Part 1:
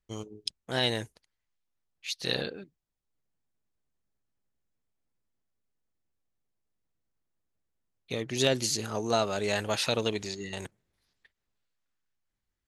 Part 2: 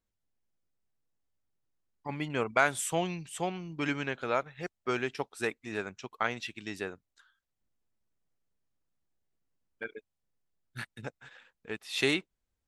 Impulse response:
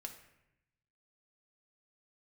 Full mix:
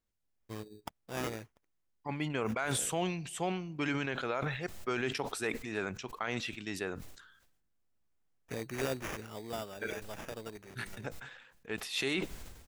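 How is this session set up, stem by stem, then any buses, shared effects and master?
-4.0 dB, 0.40 s, no send, sample-rate reducer 4.2 kHz, jitter 0%; auto duck -11 dB, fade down 1.45 s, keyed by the second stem
-2.0 dB, 0.00 s, send -13 dB, decay stretcher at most 58 dB/s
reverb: on, RT60 0.85 s, pre-delay 3 ms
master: peak limiter -21.5 dBFS, peak gain reduction 10.5 dB

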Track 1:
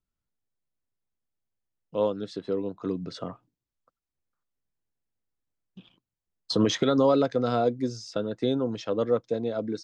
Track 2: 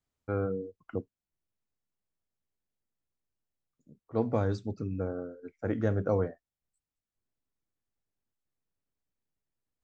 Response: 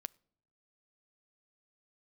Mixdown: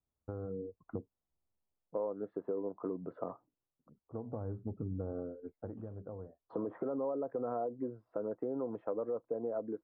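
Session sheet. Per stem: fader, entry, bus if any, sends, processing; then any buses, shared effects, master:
-4.5 dB, 0.00 s, no send, low-pass that closes with the level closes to 1.1 kHz, closed at -18.5 dBFS; peak limiter -20 dBFS, peak gain reduction 8 dB; tone controls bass -14 dB, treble -7 dB
-5.0 dB, 0.00 s, no send, peaking EQ 64 Hz +6.5 dB 0.77 oct; compression 12:1, threshold -33 dBFS, peak gain reduction 12 dB; auto duck -8 dB, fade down 0.40 s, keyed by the first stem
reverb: none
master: level rider gain up to 5 dB; low-pass 1.1 kHz 24 dB/octave; compression 5:1, threshold -33 dBFS, peak gain reduction 8 dB

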